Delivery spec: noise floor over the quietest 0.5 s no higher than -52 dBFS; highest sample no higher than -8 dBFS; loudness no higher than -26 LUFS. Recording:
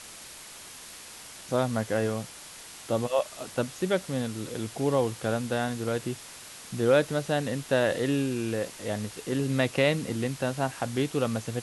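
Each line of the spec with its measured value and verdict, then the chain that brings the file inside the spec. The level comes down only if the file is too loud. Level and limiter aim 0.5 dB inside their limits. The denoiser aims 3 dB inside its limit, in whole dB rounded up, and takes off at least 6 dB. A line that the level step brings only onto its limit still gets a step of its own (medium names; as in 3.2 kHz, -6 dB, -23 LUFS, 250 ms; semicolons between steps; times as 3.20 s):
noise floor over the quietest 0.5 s -45 dBFS: fail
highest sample -10.0 dBFS: pass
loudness -28.5 LUFS: pass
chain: noise reduction 10 dB, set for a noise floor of -45 dBFS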